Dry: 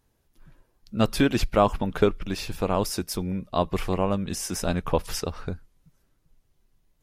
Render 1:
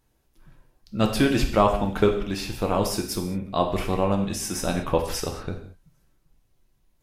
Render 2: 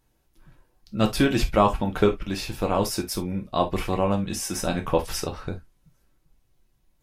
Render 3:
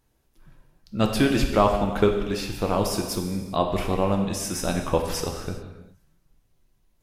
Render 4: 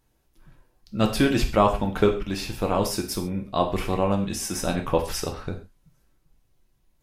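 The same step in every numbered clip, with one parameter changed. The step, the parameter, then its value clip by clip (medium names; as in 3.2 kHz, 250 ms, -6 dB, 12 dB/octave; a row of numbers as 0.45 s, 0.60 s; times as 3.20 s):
gated-style reverb, gate: 240 ms, 90 ms, 440 ms, 160 ms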